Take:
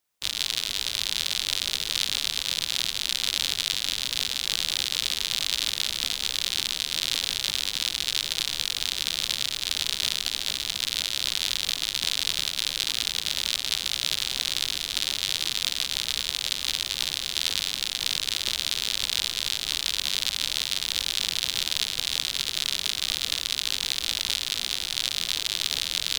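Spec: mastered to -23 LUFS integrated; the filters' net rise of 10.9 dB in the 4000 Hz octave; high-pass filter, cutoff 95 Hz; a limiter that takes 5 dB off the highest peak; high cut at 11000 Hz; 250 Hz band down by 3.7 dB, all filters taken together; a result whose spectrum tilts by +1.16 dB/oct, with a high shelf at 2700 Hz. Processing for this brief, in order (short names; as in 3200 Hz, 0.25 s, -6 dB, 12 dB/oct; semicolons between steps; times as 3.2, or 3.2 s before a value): HPF 95 Hz; LPF 11000 Hz; bell 250 Hz -5 dB; high shelf 2700 Hz +6 dB; bell 4000 Hz +8 dB; gain -5.5 dB; limiter -7 dBFS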